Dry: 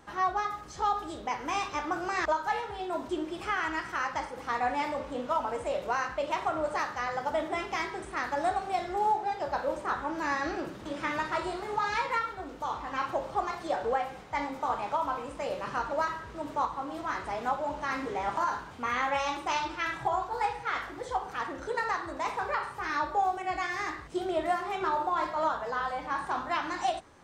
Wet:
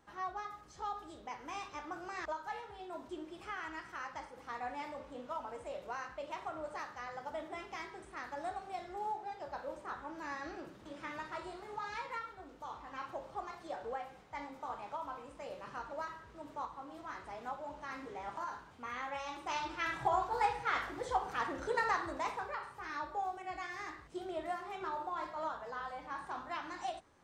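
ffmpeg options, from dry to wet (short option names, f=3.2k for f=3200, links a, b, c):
-af "volume=-2dB,afade=t=in:st=19.27:d=0.91:silence=0.316228,afade=t=out:st=22.03:d=0.47:silence=0.375837"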